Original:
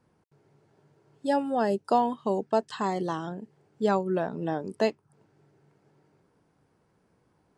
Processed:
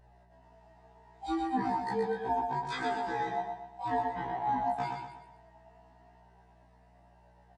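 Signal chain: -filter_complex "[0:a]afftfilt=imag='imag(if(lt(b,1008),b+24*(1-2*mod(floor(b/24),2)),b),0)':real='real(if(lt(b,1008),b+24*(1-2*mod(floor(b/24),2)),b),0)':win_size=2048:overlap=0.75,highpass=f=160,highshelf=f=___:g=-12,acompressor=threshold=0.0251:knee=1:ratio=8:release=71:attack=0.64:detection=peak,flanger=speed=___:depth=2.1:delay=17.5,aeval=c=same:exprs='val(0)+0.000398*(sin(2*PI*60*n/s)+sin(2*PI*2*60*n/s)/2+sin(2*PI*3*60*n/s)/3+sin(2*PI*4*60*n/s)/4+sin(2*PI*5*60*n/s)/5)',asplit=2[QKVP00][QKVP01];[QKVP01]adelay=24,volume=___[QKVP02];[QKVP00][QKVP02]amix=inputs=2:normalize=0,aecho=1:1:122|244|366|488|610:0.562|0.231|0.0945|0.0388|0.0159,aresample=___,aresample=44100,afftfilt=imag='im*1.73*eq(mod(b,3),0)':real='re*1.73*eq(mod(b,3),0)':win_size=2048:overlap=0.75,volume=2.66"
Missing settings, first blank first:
7.2k, 0.95, 0.224, 22050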